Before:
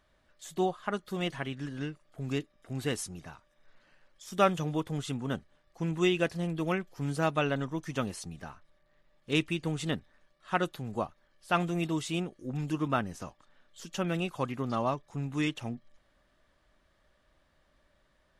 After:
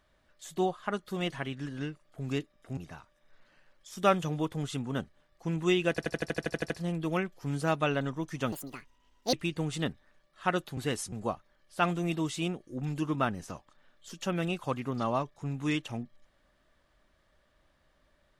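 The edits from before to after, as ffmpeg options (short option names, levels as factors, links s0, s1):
-filter_complex "[0:a]asplit=16[s0][s1][s2][s3][s4][s5][s6][s7][s8][s9][s10][s11][s12][s13][s14][s15];[s0]atrim=end=2.772[s16];[s1]atrim=start=3.118:end=6.332[s17];[s2]atrim=start=6.248:end=6.332[s18];[s3]atrim=start=6.248:end=6.332[s19];[s4]atrim=start=6.248:end=6.332[s20];[s5]atrim=start=6.248:end=6.332[s21];[s6]atrim=start=6.248:end=6.332[s22];[s7]atrim=start=6.248:end=6.332[s23];[s8]atrim=start=6.248:end=6.332[s24];[s9]atrim=start=6.248:end=6.332[s25];[s10]atrim=start=6.248:end=6.332[s26];[s11]atrim=start=6.248:end=8.074[s27];[s12]atrim=start=8.07:end=9.4,asetpts=PTS-STARTPTS,asetrate=72324,aresample=44100,atrim=end_sample=35764,asetpts=PTS-STARTPTS[s28];[s13]atrim=start=9.396:end=10.842[s29];[s14]atrim=start=2.768:end=3.122[s30];[s15]atrim=start=10.838[s31];[s16][s17]acrossfade=d=0.004:c1=hsin:c2=hsin[s32];[s32][s18]acrossfade=d=0.004:c1=hsin:c2=hsin[s33];[s33][s19]acrossfade=d=0.004:c1=hsin:c2=hsin[s34];[s34][s20]acrossfade=d=0.004:c1=hsin:c2=hsin[s35];[s35][s21]acrossfade=d=0.004:c1=hsin:c2=hsin[s36];[s36][s22]acrossfade=d=0.004:c1=hsin:c2=hsin[s37];[s37][s23]acrossfade=d=0.004:c1=hsin:c2=hsin[s38];[s38][s24]acrossfade=d=0.004:c1=hsin:c2=hsin[s39];[s39][s25]acrossfade=d=0.004:c1=hsin:c2=hsin[s40];[s40][s26]acrossfade=d=0.004:c1=hsin:c2=hsin[s41];[s41][s27]acrossfade=d=0.004:c1=hsin:c2=hsin[s42];[s42][s28]acrossfade=d=0.004:c1=hsin:c2=hsin[s43];[s43][s29]acrossfade=d=0.004:c1=hsin:c2=hsin[s44];[s44][s30]acrossfade=d=0.004:c1=hsin:c2=hsin[s45];[s45][s31]acrossfade=d=0.004:c1=hsin:c2=hsin"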